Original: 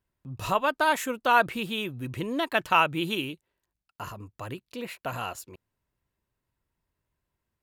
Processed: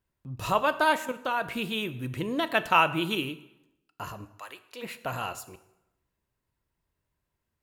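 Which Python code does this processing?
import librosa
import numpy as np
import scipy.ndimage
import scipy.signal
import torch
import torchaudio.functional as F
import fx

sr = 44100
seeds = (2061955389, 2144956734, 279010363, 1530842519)

y = fx.level_steps(x, sr, step_db=14, at=(0.96, 1.49))
y = fx.highpass(y, sr, hz=fx.line((4.24, 1300.0), (4.82, 500.0)), slope=12, at=(4.24, 4.82), fade=0.02)
y = fx.rev_plate(y, sr, seeds[0], rt60_s=0.89, hf_ratio=0.8, predelay_ms=0, drr_db=11.5)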